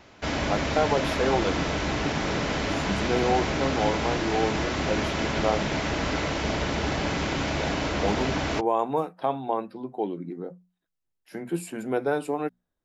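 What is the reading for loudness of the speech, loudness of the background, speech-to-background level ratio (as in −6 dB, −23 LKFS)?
−29.5 LKFS, −27.5 LKFS, −2.0 dB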